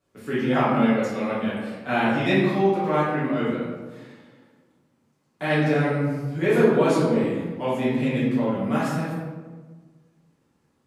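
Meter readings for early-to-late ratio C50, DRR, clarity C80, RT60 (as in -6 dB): -1.0 dB, -10.5 dB, 2.0 dB, 1.4 s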